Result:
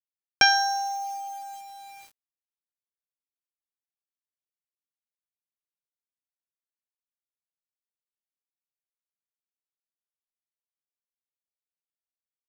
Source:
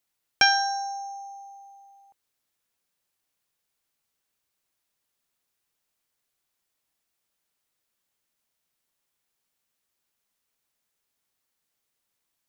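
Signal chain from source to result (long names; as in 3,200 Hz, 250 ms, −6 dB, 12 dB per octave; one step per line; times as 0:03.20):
in parallel at −2 dB: downward compressor 4 to 1, threshold −39 dBFS, peak gain reduction 20 dB
on the sum: bit reduction 8 bits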